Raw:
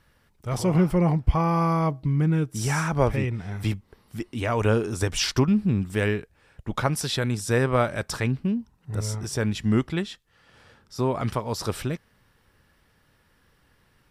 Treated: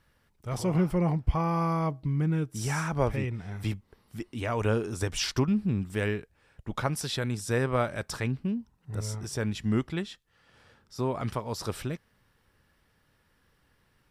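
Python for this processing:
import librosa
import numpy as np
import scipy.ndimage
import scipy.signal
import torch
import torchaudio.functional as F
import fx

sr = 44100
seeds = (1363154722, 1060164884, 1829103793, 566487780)

y = x * librosa.db_to_amplitude(-5.0)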